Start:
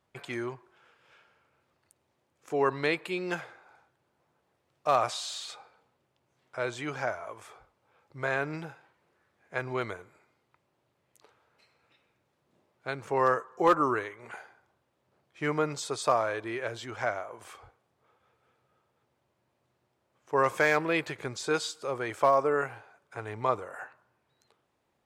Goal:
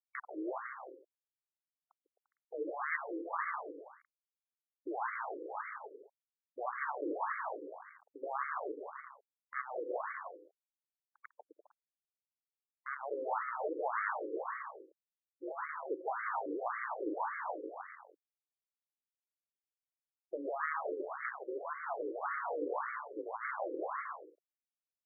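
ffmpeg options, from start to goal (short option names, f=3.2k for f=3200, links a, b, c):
-filter_complex "[0:a]tiltshelf=f=1.5k:g=9,acrossover=split=1000[a][b];[b]acontrast=39[c];[a][c]amix=inputs=2:normalize=0,alimiter=limit=-14.5dB:level=0:latency=1:release=57,areverse,acompressor=threshold=-36dB:ratio=6,areverse,acrusher=bits=4:dc=4:mix=0:aa=0.000001,highpass=f=470:t=q:w=0.5412,highpass=f=470:t=q:w=1.307,lowpass=f=3.2k:t=q:w=0.5176,lowpass=f=3.2k:t=q:w=0.7071,lowpass=f=3.2k:t=q:w=1.932,afreqshift=-390,aecho=1:1:150|262.5|346.9|410.2|457.6:0.631|0.398|0.251|0.158|0.1,afftfilt=real='re*between(b*sr/1024,370*pow(1600/370,0.5+0.5*sin(2*PI*1.8*pts/sr))/1.41,370*pow(1600/370,0.5+0.5*sin(2*PI*1.8*pts/sr))*1.41)':imag='im*between(b*sr/1024,370*pow(1600/370,0.5+0.5*sin(2*PI*1.8*pts/sr))/1.41,370*pow(1600/370,0.5+0.5*sin(2*PI*1.8*pts/sr))*1.41)':win_size=1024:overlap=0.75,volume=11.5dB"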